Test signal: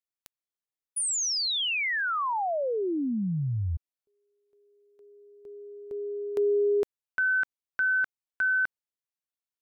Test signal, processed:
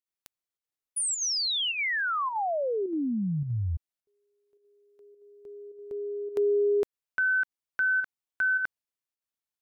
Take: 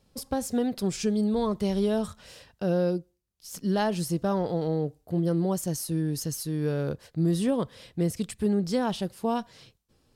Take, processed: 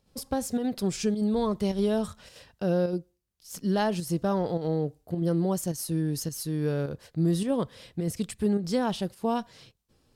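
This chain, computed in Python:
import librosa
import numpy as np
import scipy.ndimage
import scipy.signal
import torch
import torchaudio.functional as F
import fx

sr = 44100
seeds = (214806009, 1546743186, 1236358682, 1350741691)

y = fx.volume_shaper(x, sr, bpm=105, per_beat=1, depth_db=-7, release_ms=70.0, shape='slow start')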